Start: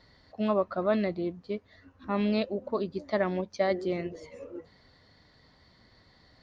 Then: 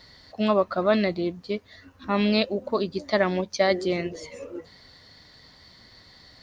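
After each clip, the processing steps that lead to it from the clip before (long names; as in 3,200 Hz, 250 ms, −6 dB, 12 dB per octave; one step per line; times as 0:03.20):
high-shelf EQ 2,700 Hz +11.5 dB
level +4.5 dB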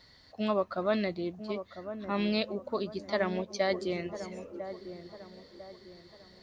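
delay with a low-pass on its return 999 ms, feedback 39%, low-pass 1,200 Hz, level −10.5 dB
level −7.5 dB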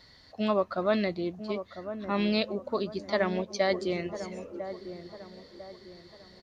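downsampling to 32,000 Hz
level +2.5 dB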